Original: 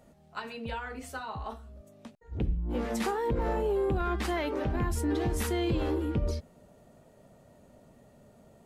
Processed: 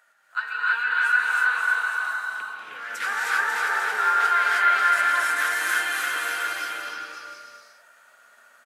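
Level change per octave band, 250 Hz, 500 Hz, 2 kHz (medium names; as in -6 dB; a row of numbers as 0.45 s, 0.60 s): under -15 dB, -9.5 dB, +22.5 dB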